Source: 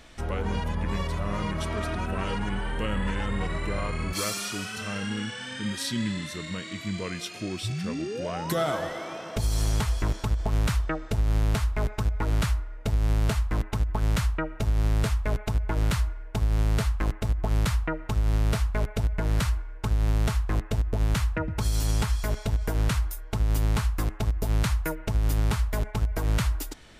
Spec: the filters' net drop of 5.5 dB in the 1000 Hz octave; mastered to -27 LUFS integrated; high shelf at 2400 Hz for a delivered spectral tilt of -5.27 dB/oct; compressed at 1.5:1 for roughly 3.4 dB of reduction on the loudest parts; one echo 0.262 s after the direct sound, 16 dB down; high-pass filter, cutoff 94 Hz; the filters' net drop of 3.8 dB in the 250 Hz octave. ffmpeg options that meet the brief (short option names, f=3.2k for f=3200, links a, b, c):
-af "highpass=94,equalizer=f=250:t=o:g=-5,equalizer=f=1k:t=o:g=-6,highshelf=f=2.4k:g=-4.5,acompressor=threshold=-35dB:ratio=1.5,aecho=1:1:262:0.158,volume=9.5dB"